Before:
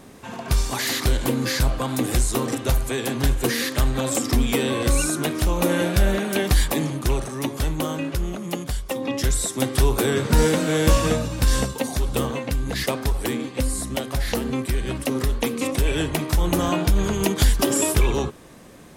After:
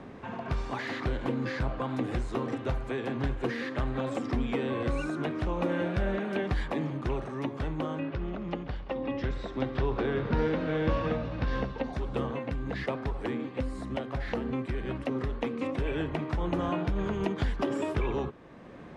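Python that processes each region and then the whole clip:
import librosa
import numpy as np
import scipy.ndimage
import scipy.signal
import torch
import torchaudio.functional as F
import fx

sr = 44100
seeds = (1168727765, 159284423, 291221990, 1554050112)

y = fx.chain(x, sr, fx.lowpass(hz=5300.0, slope=24),
    fx.echo_heads(ms=67, heads='all three', feedback_pct=65, wet_db=-22.0), at=(7.99, 11.93))
y = scipy.signal.sosfilt(scipy.signal.butter(2, 2100.0, 'lowpass', fs=sr, output='sos'), y)
y = fx.low_shelf(y, sr, hz=73.0, db=-7.0)
y = fx.band_squash(y, sr, depth_pct=40)
y = y * 10.0 ** (-7.0 / 20.0)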